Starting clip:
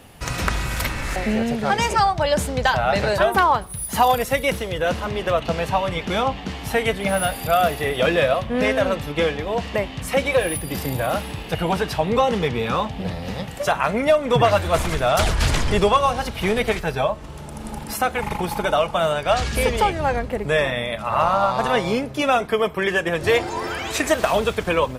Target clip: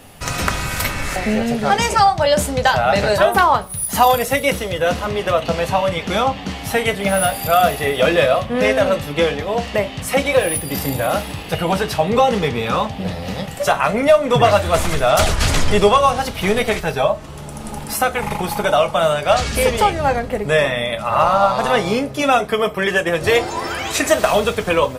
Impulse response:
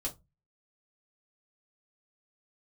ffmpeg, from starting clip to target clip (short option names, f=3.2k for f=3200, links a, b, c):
-filter_complex "[0:a]asplit=2[a][b];[b]bass=f=250:g=-6,treble=f=4k:g=7[c];[1:a]atrim=start_sample=2205[d];[c][d]afir=irnorm=-1:irlink=0,volume=-6.5dB[e];[a][e]amix=inputs=2:normalize=0,volume=1dB"